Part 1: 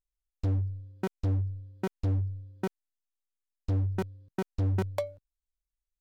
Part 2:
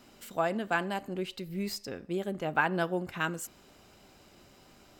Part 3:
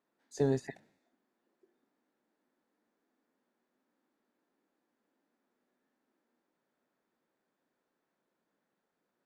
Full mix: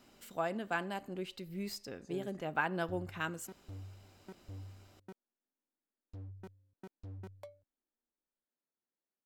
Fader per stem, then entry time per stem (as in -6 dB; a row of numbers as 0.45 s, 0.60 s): -19.5 dB, -6.0 dB, -18.0 dB; 2.45 s, 0.00 s, 1.70 s